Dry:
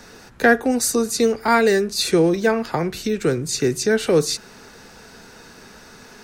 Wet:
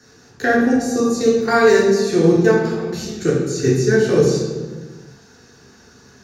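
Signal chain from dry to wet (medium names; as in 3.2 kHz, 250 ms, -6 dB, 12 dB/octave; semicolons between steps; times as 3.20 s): de-hum 45.47 Hz, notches 5; level held to a coarse grid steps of 18 dB; reverberation RT60 1.4 s, pre-delay 3 ms, DRR -5 dB; trim -4.5 dB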